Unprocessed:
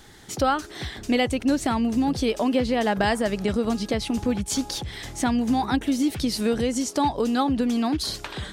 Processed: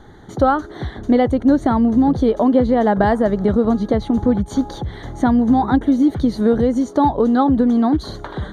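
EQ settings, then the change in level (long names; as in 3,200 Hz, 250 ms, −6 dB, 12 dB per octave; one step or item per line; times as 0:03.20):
moving average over 17 samples
+8.5 dB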